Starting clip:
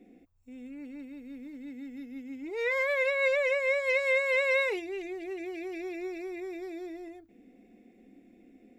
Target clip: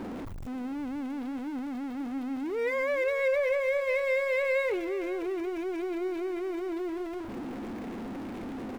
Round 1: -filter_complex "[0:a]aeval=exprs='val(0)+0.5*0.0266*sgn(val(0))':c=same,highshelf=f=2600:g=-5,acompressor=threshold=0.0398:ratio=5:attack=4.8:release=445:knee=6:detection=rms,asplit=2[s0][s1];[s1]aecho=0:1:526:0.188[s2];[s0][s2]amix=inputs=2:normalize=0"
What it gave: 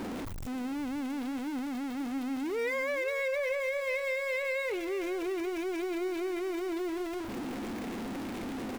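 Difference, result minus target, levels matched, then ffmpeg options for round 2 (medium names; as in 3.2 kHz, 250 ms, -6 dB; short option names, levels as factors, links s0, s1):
compression: peak gain reduction +8 dB; 4 kHz band +5.5 dB
-filter_complex "[0:a]aeval=exprs='val(0)+0.5*0.0266*sgn(val(0))':c=same,highshelf=f=2600:g=-15.5,asplit=2[s0][s1];[s1]aecho=0:1:526:0.188[s2];[s0][s2]amix=inputs=2:normalize=0"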